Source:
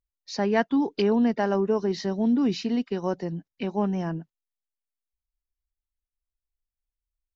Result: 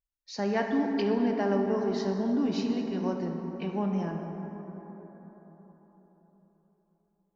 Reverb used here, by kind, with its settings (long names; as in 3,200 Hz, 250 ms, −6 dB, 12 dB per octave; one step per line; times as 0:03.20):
dense smooth reverb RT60 4.5 s, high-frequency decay 0.35×, DRR 2 dB
level −6 dB